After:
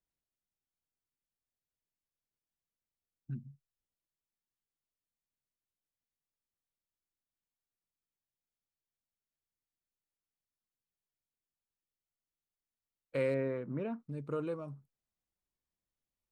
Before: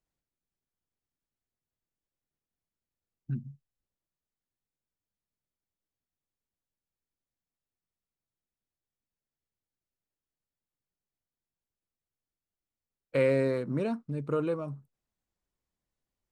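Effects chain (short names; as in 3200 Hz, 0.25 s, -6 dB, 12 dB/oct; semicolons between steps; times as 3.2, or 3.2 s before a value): 13.34–14 polynomial smoothing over 25 samples; gain -7 dB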